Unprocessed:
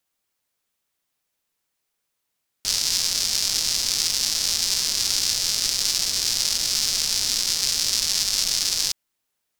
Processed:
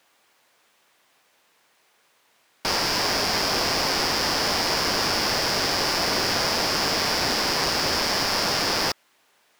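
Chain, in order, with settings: overdrive pedal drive 32 dB, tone 1.4 kHz, clips at -4 dBFS; band-stop 1.3 kHz, Q 28

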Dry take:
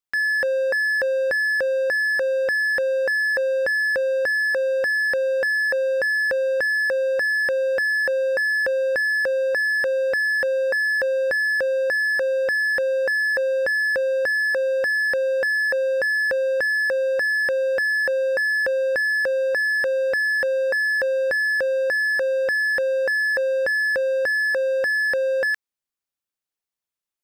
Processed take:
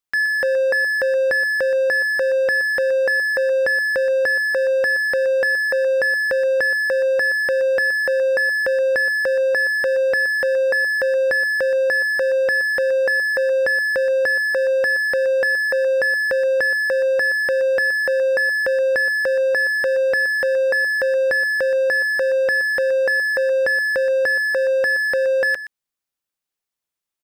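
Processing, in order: delay 123 ms -13 dB; trim +3 dB

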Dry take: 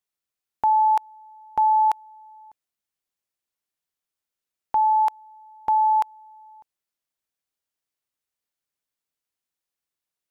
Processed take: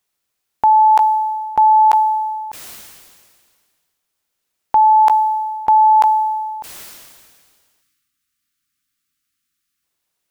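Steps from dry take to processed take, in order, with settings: spectral selection erased 7.82–9.84 s, 330–1100 Hz; loudness maximiser +18.5 dB; decay stretcher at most 31 dB/s; trim -6 dB

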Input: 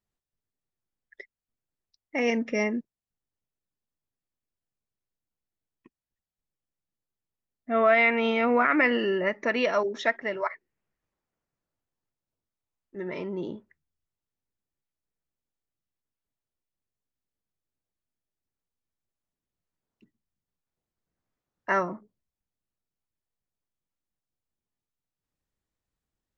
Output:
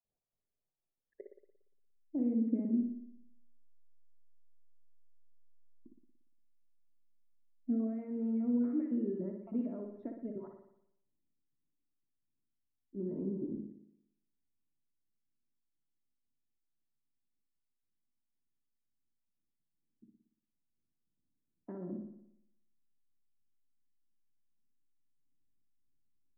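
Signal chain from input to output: random holes in the spectrogram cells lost 21%; in parallel at -8 dB: hysteresis with a dead band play -37 dBFS; on the sum: compression 6:1, threshold -27 dBFS, peak gain reduction 12.5 dB; de-hum 52.91 Hz, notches 11; low-pass sweep 660 Hz -> 270 Hz, 0.71–1.94 s; on a send at -4.5 dB: reverberation, pre-delay 58 ms; on the sum: trim -6.5 dB

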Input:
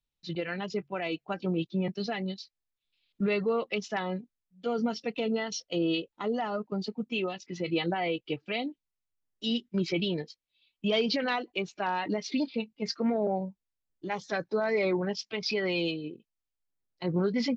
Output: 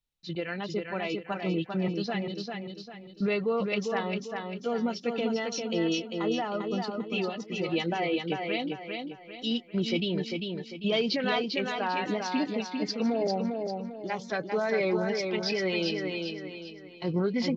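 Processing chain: feedback delay 397 ms, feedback 39%, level -4.5 dB

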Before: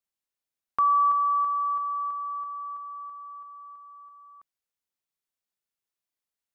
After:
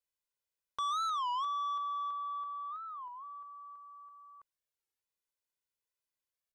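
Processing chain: comb 2 ms, depth 66%; saturation -27 dBFS, distortion -9 dB; warped record 33 1/3 rpm, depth 250 cents; trim -5 dB

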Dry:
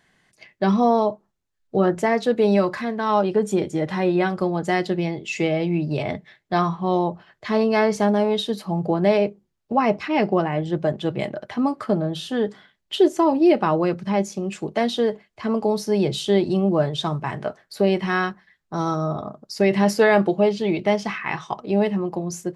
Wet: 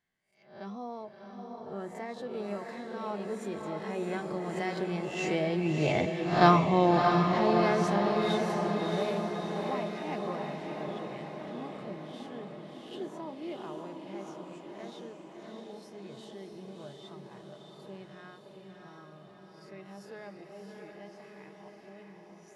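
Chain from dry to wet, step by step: reverse spectral sustain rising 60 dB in 0.48 s; Doppler pass-by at 6.41 s, 6 m/s, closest 2.4 m; echo that smears into a reverb 653 ms, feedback 61%, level -3.5 dB

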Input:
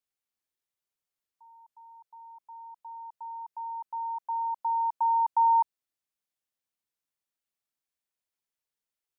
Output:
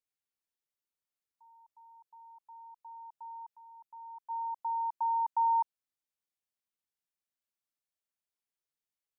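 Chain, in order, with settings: 3.55–4.29 s: peaking EQ 770 Hz -15 dB -> -6.5 dB 1.5 oct; trim -5.5 dB

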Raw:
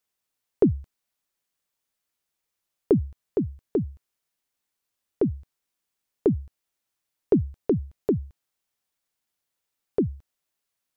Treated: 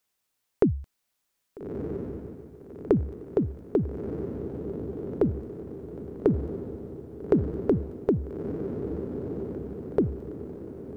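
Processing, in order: compression 2:1, threshold -27 dBFS, peak gain reduction 7.5 dB; on a send: echo that smears into a reverb 1281 ms, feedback 55%, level -6 dB; on the sum: trim +4 dB

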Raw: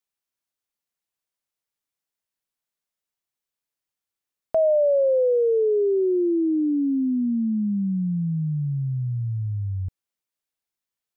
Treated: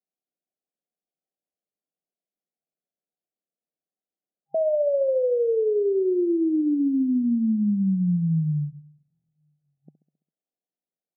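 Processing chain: peak limiter -21 dBFS, peak gain reduction 6 dB; feedback delay 67 ms, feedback 59%, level -15 dB; FFT band-pass 140–800 Hz; trim +2 dB

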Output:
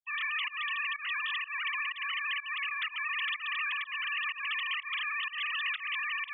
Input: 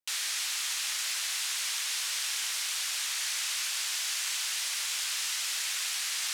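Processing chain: formants replaced by sine waves; volume shaper 125 bpm, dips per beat 1, -22 dB, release 170 ms; trim -1 dB

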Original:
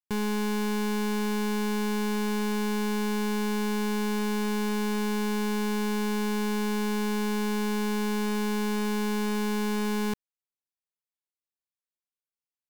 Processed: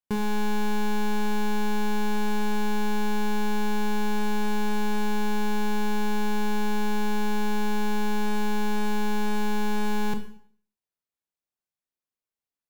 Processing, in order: tilt shelf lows +3.5 dB, about 1.5 kHz; Schroeder reverb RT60 0.53 s, combs from 25 ms, DRR 6 dB

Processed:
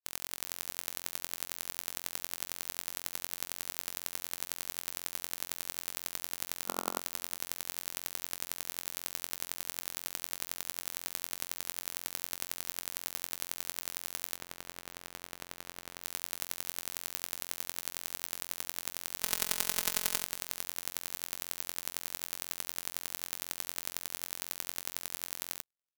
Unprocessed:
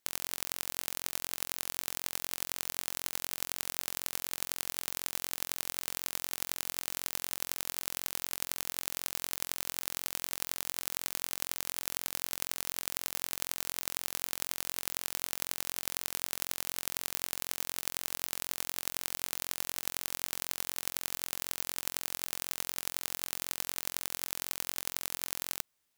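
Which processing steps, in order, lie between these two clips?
6.68–7.00 s: time-frequency box 210–1400 Hz +6 dB; 14.37–16.03 s: treble shelf 3.6 kHz -4.5 dB; 19.23–20.24 s: comb 4.7 ms, depth 75%; delay 375 ms -23 dB; spectral contrast expander 2.5:1; trim +2.5 dB

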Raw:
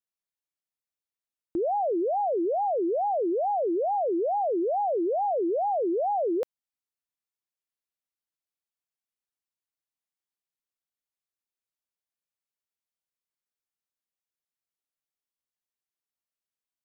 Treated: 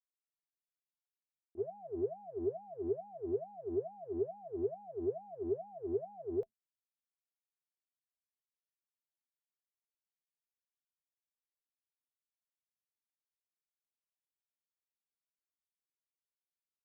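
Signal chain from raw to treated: octave divider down 2 oct, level -2 dB; gate -22 dBFS, range -36 dB; small resonant body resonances 220/400/660 Hz, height 18 dB, ringing for 55 ms; trim -1 dB

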